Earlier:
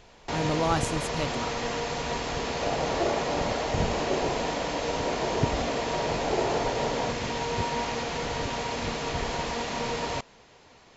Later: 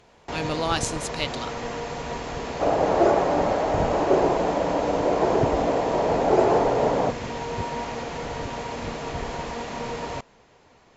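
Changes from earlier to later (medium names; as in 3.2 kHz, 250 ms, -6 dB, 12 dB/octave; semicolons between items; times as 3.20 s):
speech: add frequency weighting D; first sound: add peaking EQ 4.4 kHz -6 dB 2 oct; second sound +9.0 dB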